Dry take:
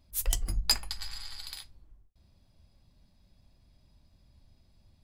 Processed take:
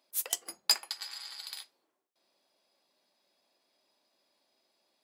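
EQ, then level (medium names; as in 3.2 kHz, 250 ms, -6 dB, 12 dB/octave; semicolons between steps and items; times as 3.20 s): high-pass 370 Hz 24 dB/octave; 0.0 dB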